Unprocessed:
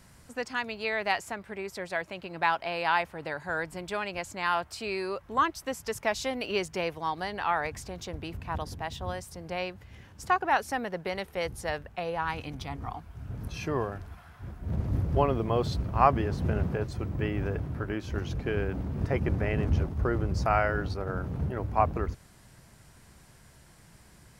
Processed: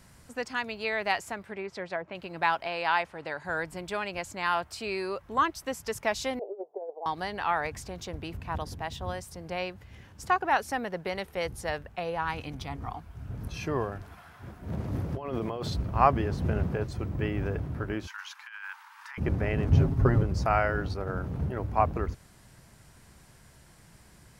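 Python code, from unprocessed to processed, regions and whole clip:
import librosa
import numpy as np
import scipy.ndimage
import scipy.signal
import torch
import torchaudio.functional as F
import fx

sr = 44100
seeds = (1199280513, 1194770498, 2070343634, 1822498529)

y = fx.chain(x, sr, fx.highpass(hz=93.0, slope=12),
    fx.env_lowpass_down(base_hz=1100.0, full_db=-28.0), at=(1.46, 2.15))
y = fx.chain(y, sr, fx.lowpass(hz=8600.0, slope=12),
    fx.low_shelf(hz=220.0, db=-6.5), at=(2.67, 3.45))
y = fx.chain(y, sr, fx.ellip_bandpass(low_hz=400.0, high_hz=810.0, order=3, stop_db=80),
    fx.over_compress(threshold_db=-35.0, ratio=-0.5), at=(6.39, 7.06))
y = fx.chain(y, sr, fx.highpass(hz=190.0, slope=6),
    fx.over_compress(threshold_db=-32.0, ratio=-1.0), at=(14.02, 15.7))
y = fx.chain(y, sr, fx.steep_highpass(hz=870.0, slope=96),
    fx.peak_eq(hz=1600.0, db=4.5, octaves=0.39),
    fx.over_compress(threshold_db=-40.0, ratio=-0.5), at=(18.07, 19.18))
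y = fx.chain(y, sr, fx.low_shelf(hz=340.0, db=7.0),
    fx.comb(ms=7.4, depth=0.82), at=(19.72, 20.23))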